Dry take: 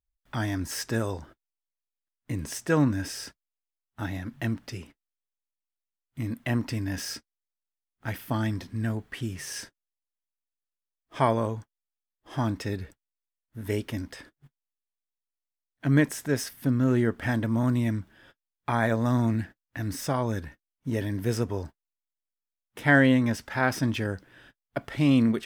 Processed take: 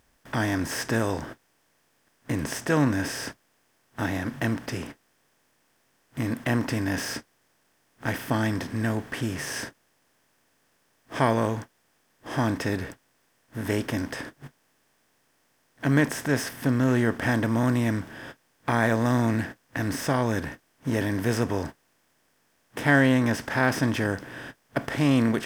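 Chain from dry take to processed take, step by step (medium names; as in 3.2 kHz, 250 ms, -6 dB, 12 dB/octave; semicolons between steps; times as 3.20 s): spectral levelling over time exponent 0.6; trim -2 dB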